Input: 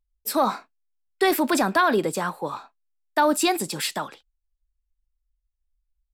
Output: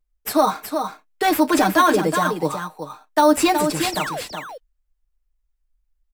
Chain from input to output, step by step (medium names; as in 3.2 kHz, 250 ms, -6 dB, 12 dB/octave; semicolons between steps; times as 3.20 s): comb 6.5 ms, depth 75%; painted sound fall, 3.92–4.21 s, 450–6100 Hz -30 dBFS; in parallel at -6 dB: sample-rate reducer 4.9 kHz, jitter 0%; on the sum: delay 370 ms -7 dB; trim -1.5 dB